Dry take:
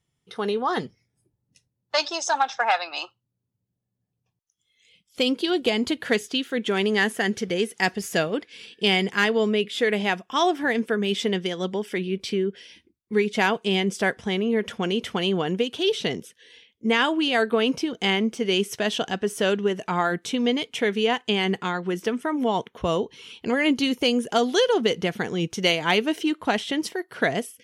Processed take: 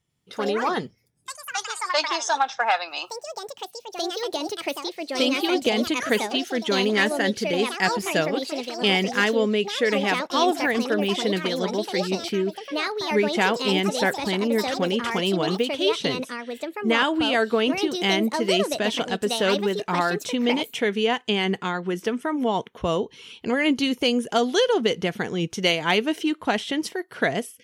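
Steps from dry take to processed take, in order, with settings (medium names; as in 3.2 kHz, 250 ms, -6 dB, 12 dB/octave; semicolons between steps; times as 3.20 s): ever faster or slower copies 96 ms, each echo +5 st, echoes 2, each echo -6 dB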